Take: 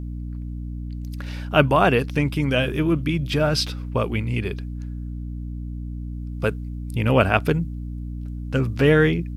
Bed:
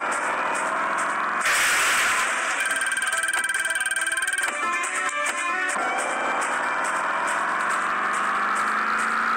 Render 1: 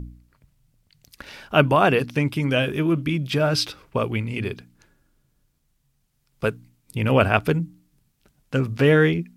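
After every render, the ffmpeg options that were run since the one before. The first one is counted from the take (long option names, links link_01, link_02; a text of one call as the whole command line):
ffmpeg -i in.wav -af "bandreject=frequency=60:width_type=h:width=4,bandreject=frequency=120:width_type=h:width=4,bandreject=frequency=180:width_type=h:width=4,bandreject=frequency=240:width_type=h:width=4,bandreject=frequency=300:width_type=h:width=4" out.wav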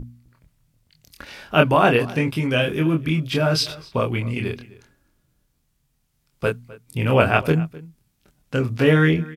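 ffmpeg -i in.wav -filter_complex "[0:a]asplit=2[link_01][link_02];[link_02]adelay=25,volume=-4dB[link_03];[link_01][link_03]amix=inputs=2:normalize=0,asplit=2[link_04][link_05];[link_05]adelay=256.6,volume=-20dB,highshelf=frequency=4000:gain=-5.77[link_06];[link_04][link_06]amix=inputs=2:normalize=0" out.wav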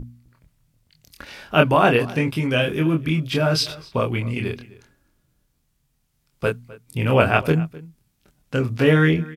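ffmpeg -i in.wav -af anull out.wav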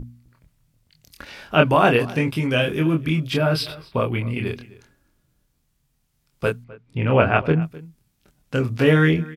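ffmpeg -i in.wav -filter_complex "[0:a]asettb=1/sr,asplit=3[link_01][link_02][link_03];[link_01]atrim=end=1.254[link_04];[link_02]atrim=start=1.25:end=1.67,asetpts=PTS-STARTPTS,afade=type=in:duration=0.004:curve=qsin,afade=type=out:start_time=0.416:duration=0.004:curve=qsin,acrossover=split=5700[link_05][link_06];[link_06]acompressor=threshold=-53dB:ratio=4:attack=1:release=60[link_07];[link_05][link_07]amix=inputs=2:normalize=0[link_08];[link_03]atrim=start=1.666[link_09];[link_04][link_08]acrossfade=duration=0.004:curve1=hsin:curve2=qsin[link_10];[link_10][link_09]acrossfade=duration=0.004:curve1=qsin:curve2=hsin,asettb=1/sr,asplit=3[link_11][link_12][link_13];[link_11]atrim=end=3.374[link_14];[link_12]atrim=start=3.37:end=4.47,asetpts=PTS-STARTPTS,afade=type=in:duration=0.004:curve=qsin,afade=type=out:start_time=1.096:duration=0.004:curve=qsin,equalizer=frequency=6500:width=2.2:gain=-14.5[link_15];[link_13]atrim=start=4.466[link_16];[link_14][link_15]acrossfade=duration=0.004:curve1=hsin:curve2=qsin[link_17];[link_17][link_16]acrossfade=duration=0.004:curve1=qsin:curve2=hsin,asettb=1/sr,asplit=3[link_18][link_19][link_20];[link_18]atrim=end=6.644[link_21];[link_19]atrim=start=6.64:end=7.62,asetpts=PTS-STARTPTS,afade=type=in:duration=0.004:curve=qsin,afade=type=out:start_time=0.976:duration=0.004:curve=qsin,lowpass=2700[link_22];[link_20]atrim=start=7.616[link_23];[link_21][link_22]acrossfade=duration=0.004:curve1=hsin:curve2=qsin[link_24];[link_24][link_23]acrossfade=duration=0.004:curve1=qsin:curve2=hsin" out.wav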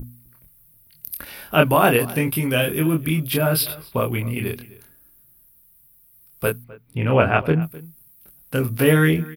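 ffmpeg -i in.wav -af "aexciter=amount=15.9:drive=6.2:freq=10000" out.wav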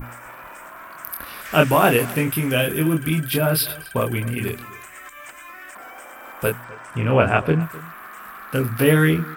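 ffmpeg -i in.wav -i bed.wav -filter_complex "[1:a]volume=-15dB[link_01];[0:a][link_01]amix=inputs=2:normalize=0" out.wav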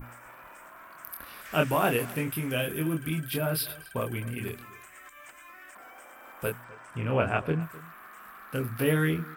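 ffmpeg -i in.wav -af "volume=-9.5dB" out.wav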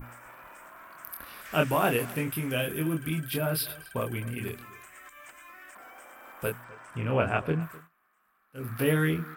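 ffmpeg -i in.wav -filter_complex "[0:a]asplit=3[link_01][link_02][link_03];[link_01]atrim=end=7.89,asetpts=PTS-STARTPTS,afade=type=out:start_time=7.73:duration=0.16:silence=0.0749894[link_04];[link_02]atrim=start=7.89:end=8.54,asetpts=PTS-STARTPTS,volume=-22.5dB[link_05];[link_03]atrim=start=8.54,asetpts=PTS-STARTPTS,afade=type=in:duration=0.16:silence=0.0749894[link_06];[link_04][link_05][link_06]concat=n=3:v=0:a=1" out.wav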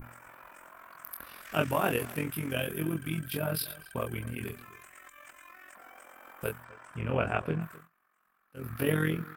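ffmpeg -i in.wav -af "tremolo=f=44:d=0.71" out.wav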